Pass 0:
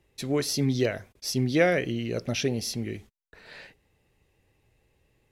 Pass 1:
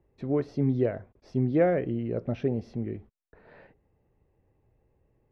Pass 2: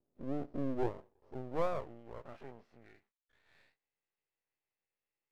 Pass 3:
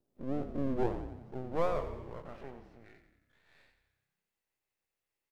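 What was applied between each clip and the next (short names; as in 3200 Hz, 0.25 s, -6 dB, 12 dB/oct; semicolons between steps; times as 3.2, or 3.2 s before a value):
LPF 1000 Hz 12 dB/oct
spectral dilation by 60 ms; band-pass sweep 250 Hz -> 2400 Hz, 0.44–3.34; half-wave rectifier; gain -5 dB
frequency-shifting echo 90 ms, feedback 60%, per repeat -32 Hz, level -10 dB; gain +2.5 dB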